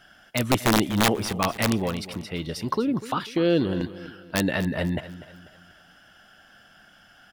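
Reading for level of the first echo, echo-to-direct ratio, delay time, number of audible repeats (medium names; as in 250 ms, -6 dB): -15.0 dB, -14.0 dB, 246 ms, 3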